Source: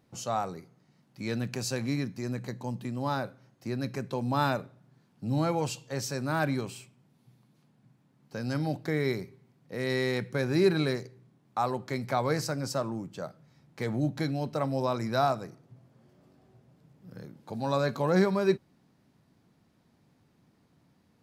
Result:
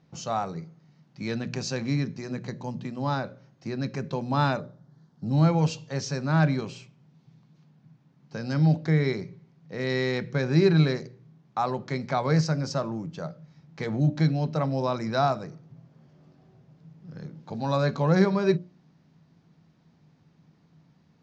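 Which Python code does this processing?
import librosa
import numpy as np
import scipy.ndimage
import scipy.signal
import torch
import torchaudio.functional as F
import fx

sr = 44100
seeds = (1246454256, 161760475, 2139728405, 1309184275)

y = fx.peak_eq(x, sr, hz=2500.0, db=-14.0, octaves=0.55, at=(4.59, 5.31))
y = scipy.signal.sosfilt(scipy.signal.butter(8, 6700.0, 'lowpass', fs=sr, output='sos'), y)
y = fx.peak_eq(y, sr, hz=160.0, db=12.5, octaves=0.25)
y = fx.hum_notches(y, sr, base_hz=60, count=10)
y = y * 10.0 ** (2.0 / 20.0)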